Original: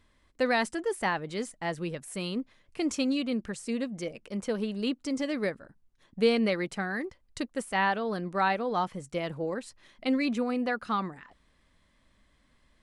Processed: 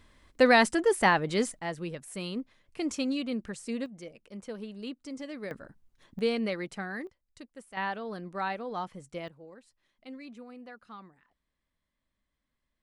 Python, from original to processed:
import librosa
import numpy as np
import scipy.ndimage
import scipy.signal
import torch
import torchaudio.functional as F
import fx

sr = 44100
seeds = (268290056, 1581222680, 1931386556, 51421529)

y = fx.gain(x, sr, db=fx.steps((0.0, 6.0), (1.59, -2.5), (3.86, -9.0), (5.51, 2.5), (6.19, -4.5), (7.07, -14.5), (7.77, -6.5), (9.28, -17.5)))